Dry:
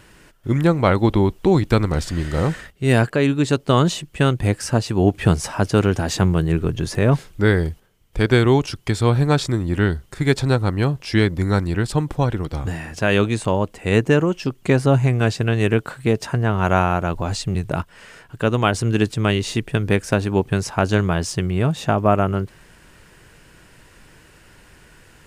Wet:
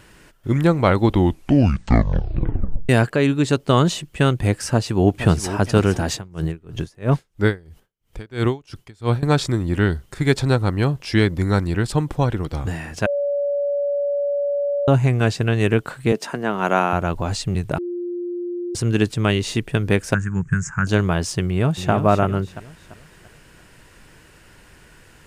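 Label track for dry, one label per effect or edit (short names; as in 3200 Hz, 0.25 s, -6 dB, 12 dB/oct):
1.090000	1.090000	tape stop 1.80 s
4.710000	5.500000	echo throw 0.47 s, feedback 40%, level -11.5 dB
6.120000	9.230000	dB-linear tremolo 3 Hz, depth 28 dB
13.060000	14.880000	bleep 571 Hz -18.5 dBFS
16.120000	16.930000	HPF 190 Hz 24 dB/oct
17.780000	18.750000	bleep 351 Hz -24 dBFS
20.140000	20.870000	EQ curve 110 Hz 0 dB, 160 Hz +8 dB, 240 Hz -10 dB, 690 Hz -24 dB, 1100 Hz -6 dB, 1600 Hz +6 dB, 4000 Hz -30 dB, 7000 Hz +6 dB, 12000 Hz -24 dB
21.430000	21.910000	echo throw 0.34 s, feedback 40%, level -8 dB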